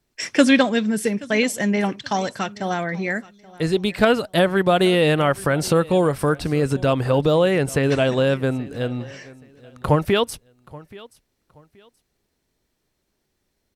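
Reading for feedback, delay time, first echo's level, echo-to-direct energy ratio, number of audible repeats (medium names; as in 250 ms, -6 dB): 27%, 827 ms, -21.5 dB, -21.0 dB, 2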